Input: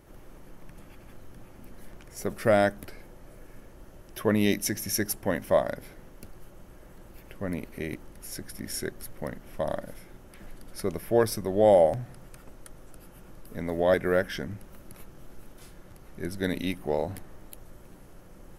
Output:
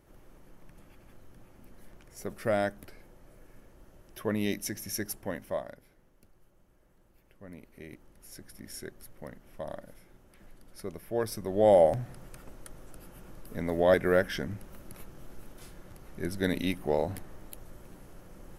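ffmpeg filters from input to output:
-af "volume=9.5dB,afade=t=out:st=5.16:d=0.66:silence=0.334965,afade=t=in:st=7.39:d=1.11:silence=0.446684,afade=t=in:st=11.14:d=0.81:silence=0.354813"

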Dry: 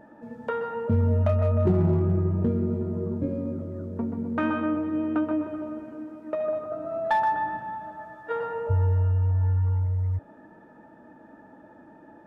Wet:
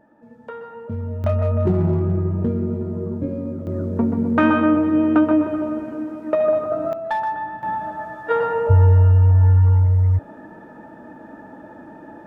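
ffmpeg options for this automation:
-af "asetnsamples=n=441:p=0,asendcmd='1.24 volume volume 3dB;3.67 volume volume 10dB;6.93 volume volume 0dB;7.63 volume volume 10dB',volume=-5.5dB"

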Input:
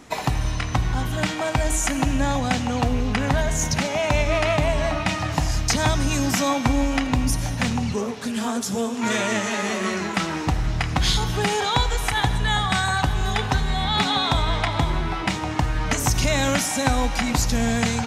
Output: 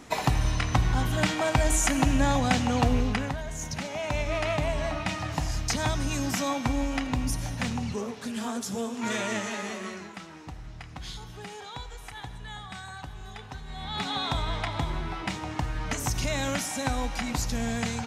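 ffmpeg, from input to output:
-af "volume=16.5dB,afade=t=out:st=2.98:d=0.39:silence=0.237137,afade=t=in:st=3.37:d=1.15:silence=0.446684,afade=t=out:st=9.38:d=0.82:silence=0.251189,afade=t=in:st=13.63:d=0.6:silence=0.281838"

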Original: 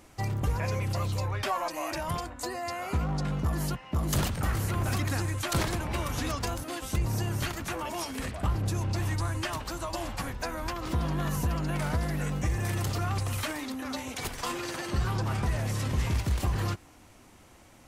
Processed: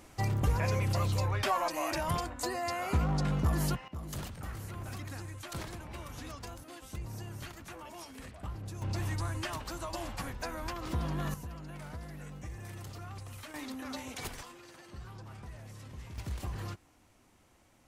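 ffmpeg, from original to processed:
-af "asetnsamples=n=441:p=0,asendcmd='3.88 volume volume -12.5dB;8.82 volume volume -4.5dB;11.34 volume volume -14.5dB;13.54 volume volume -5.5dB;14.43 volume volume -18dB;16.18 volume volume -10dB',volume=0dB"

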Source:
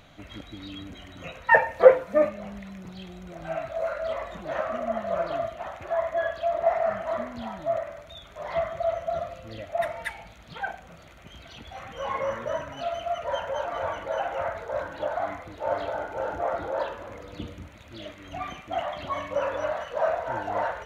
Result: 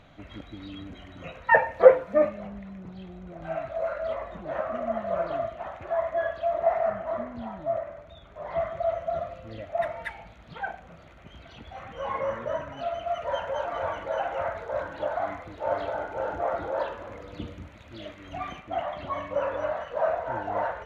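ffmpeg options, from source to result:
-af "asetnsamples=n=441:p=0,asendcmd='2.47 lowpass f 1100;3.42 lowpass f 2000;4.15 lowpass f 1300;4.75 lowpass f 2000;6.9 lowpass f 1100;8.6 lowpass f 2100;13.08 lowpass f 3900;18.6 lowpass f 1900',lowpass=f=2.3k:p=1"

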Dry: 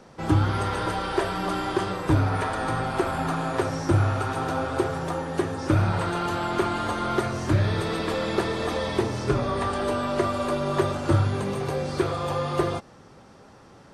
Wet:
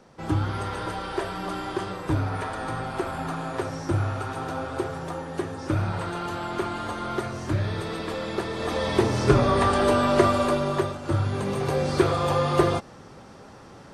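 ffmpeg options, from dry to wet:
-af "volume=16.5dB,afade=t=in:st=8.5:d=0.78:silence=0.334965,afade=t=out:st=10.27:d=0.72:silence=0.237137,afade=t=in:st=10.99:d=0.9:silence=0.281838"

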